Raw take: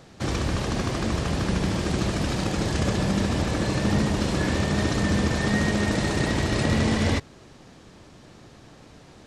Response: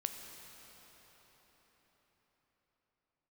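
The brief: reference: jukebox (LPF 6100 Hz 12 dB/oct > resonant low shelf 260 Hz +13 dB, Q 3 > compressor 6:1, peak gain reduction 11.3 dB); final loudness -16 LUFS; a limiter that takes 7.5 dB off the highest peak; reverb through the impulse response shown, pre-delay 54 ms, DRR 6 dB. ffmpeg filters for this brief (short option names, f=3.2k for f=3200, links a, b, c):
-filter_complex "[0:a]alimiter=limit=-17dB:level=0:latency=1,asplit=2[a][b];[1:a]atrim=start_sample=2205,adelay=54[c];[b][c]afir=irnorm=-1:irlink=0,volume=-6.5dB[d];[a][d]amix=inputs=2:normalize=0,lowpass=6.1k,lowshelf=f=260:t=q:w=3:g=13,acompressor=threshold=-15dB:ratio=6,volume=3.5dB"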